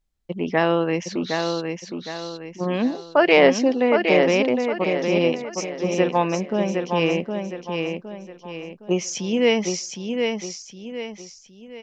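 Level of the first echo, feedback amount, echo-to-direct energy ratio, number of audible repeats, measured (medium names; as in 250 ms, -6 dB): -5.0 dB, 39%, -4.5 dB, 4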